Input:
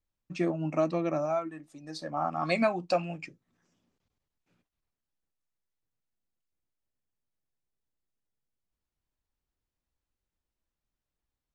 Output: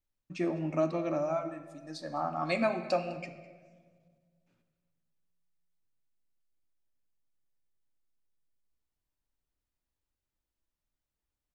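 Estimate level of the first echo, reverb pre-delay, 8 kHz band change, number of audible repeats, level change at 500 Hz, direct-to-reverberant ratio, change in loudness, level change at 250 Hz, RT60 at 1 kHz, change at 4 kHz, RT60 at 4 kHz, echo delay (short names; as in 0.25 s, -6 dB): -20.0 dB, 3 ms, n/a, 1, -2.0 dB, 7.5 dB, -2.5 dB, -2.0 dB, 1.3 s, -2.5 dB, 0.95 s, 0.204 s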